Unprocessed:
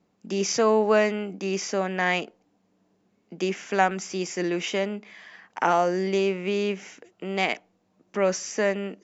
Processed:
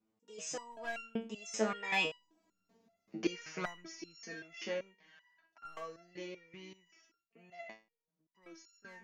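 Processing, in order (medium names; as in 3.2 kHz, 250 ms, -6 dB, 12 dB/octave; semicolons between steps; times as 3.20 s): one-sided wavefolder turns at -15 dBFS; Doppler pass-by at 2.60 s, 28 m/s, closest 9.8 m; resonator arpeggio 5.2 Hz 110–1400 Hz; trim +13.5 dB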